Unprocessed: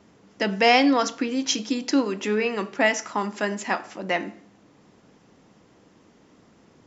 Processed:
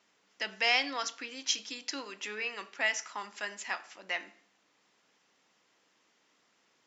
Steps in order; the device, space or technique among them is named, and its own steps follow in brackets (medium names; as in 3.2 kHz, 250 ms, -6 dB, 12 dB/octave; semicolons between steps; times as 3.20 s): filter by subtraction (in parallel: low-pass 2.6 kHz 12 dB/octave + polarity flip); on the sum: trim -7 dB